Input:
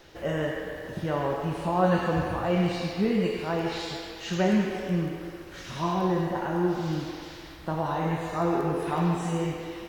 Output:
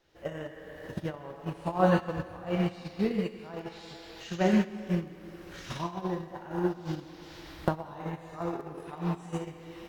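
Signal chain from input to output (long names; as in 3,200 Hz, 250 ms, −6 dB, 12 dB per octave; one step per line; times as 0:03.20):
camcorder AGC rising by 33 dB per second
noise gate −22 dBFS, range −19 dB
on a send: convolution reverb RT60 2.6 s, pre-delay 113 ms, DRR 19 dB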